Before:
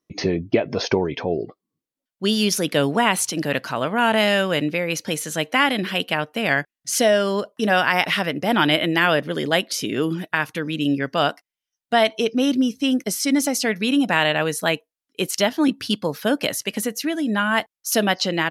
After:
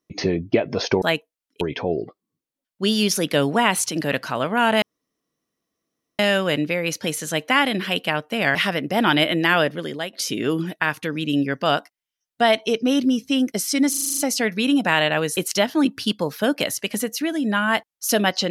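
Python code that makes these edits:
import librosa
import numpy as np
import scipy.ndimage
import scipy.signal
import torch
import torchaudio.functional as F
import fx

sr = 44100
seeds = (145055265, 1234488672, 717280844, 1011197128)

y = fx.edit(x, sr, fx.insert_room_tone(at_s=4.23, length_s=1.37),
    fx.cut(start_s=6.59, length_s=1.48),
    fx.fade_out_to(start_s=9.13, length_s=0.52, floor_db=-14.5),
    fx.stutter(start_s=13.42, slice_s=0.04, count=8),
    fx.move(start_s=14.61, length_s=0.59, to_s=1.02), tone=tone)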